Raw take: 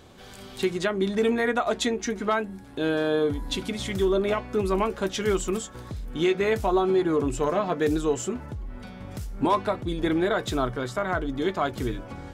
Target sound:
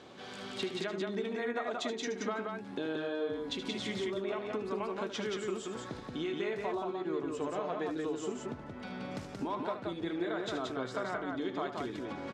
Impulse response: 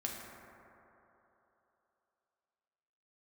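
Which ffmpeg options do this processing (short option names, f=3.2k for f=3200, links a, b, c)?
-af "acompressor=threshold=-33dB:ratio=12,highpass=200,lowpass=5.3k,aecho=1:1:75.8|177.8:0.316|0.708"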